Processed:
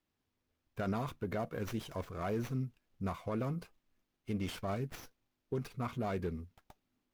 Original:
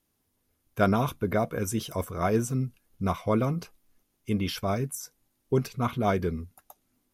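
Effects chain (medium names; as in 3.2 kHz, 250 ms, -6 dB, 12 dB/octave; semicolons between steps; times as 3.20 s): peak limiter -19 dBFS, peak gain reduction 8.5 dB; sliding maximum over 5 samples; trim -8 dB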